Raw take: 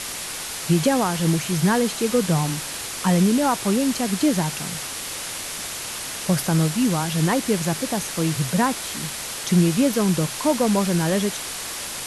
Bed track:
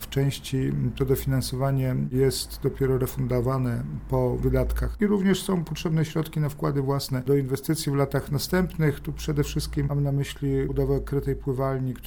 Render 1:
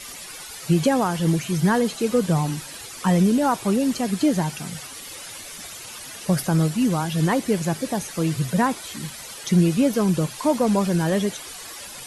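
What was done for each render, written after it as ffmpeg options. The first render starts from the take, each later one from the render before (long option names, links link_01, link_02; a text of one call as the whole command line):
ffmpeg -i in.wav -af "afftdn=noise_reduction=12:noise_floor=-32" out.wav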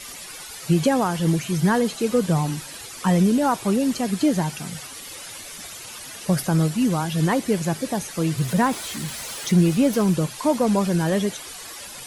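ffmpeg -i in.wav -filter_complex "[0:a]asettb=1/sr,asplit=3[link_01][link_02][link_03];[link_01]atrim=end=8.384[link_04];[link_02]atrim=start=8.38:end=10.14,asetpts=PTS-STARTPTS,afade=type=in:duration=0.004:curve=qsin,afade=type=out:start_time=1.756:duration=0.004:curve=qsin,aeval=exprs='val(0)+0.5*0.02*sgn(val(0))':channel_layout=same[link_05];[link_03]atrim=start=10.136[link_06];[link_04][link_05]acrossfade=duration=0.004:curve1=hsin:curve2=qsin[link_07];[link_07][link_06]acrossfade=duration=0.004:curve1=qsin:curve2=hsin" out.wav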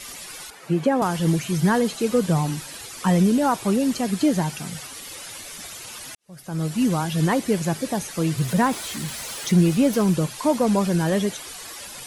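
ffmpeg -i in.wav -filter_complex "[0:a]asettb=1/sr,asplit=3[link_01][link_02][link_03];[link_01]atrim=end=0.504[link_04];[link_02]atrim=start=0.5:end=1.02,asetpts=PTS-STARTPTS,afade=type=in:duration=0.004:curve=qsin,afade=type=out:start_time=0.516:duration=0.004:curve=qsin,acrossover=split=170 2300:gain=0.141 1 0.224[link_05][link_06][link_07];[link_05][link_06][link_07]amix=inputs=3:normalize=0[link_08];[link_03]atrim=start=1.016[link_09];[link_04][link_08]acrossfade=duration=0.004:curve1=hsin:curve2=qsin[link_10];[link_10][link_09]acrossfade=duration=0.004:curve1=qsin:curve2=hsin,asplit=2[link_11][link_12];[link_11]atrim=end=6.15,asetpts=PTS-STARTPTS,afade=type=out:start_time=6.146:duration=0.004:curve=hsin[link_13];[link_12]atrim=start=6.15,asetpts=PTS-STARTPTS,afade=type=in:duration=0.65:curve=qua[link_14];[link_13][link_14]concat=n=2:v=0:a=1" out.wav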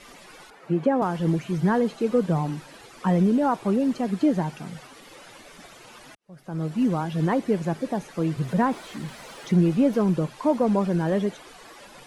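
ffmpeg -i in.wav -af "lowpass=frequency=1100:poles=1,equalizer=frequency=76:width_type=o:width=1.1:gain=-14.5" out.wav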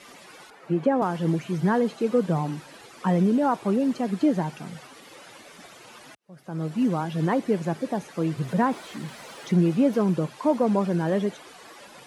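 ffmpeg -i in.wav -af "highpass=47,lowshelf=frequency=63:gain=-10.5" out.wav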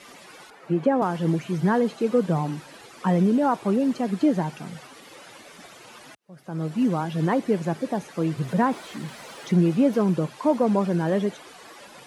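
ffmpeg -i in.wav -af "volume=1dB" out.wav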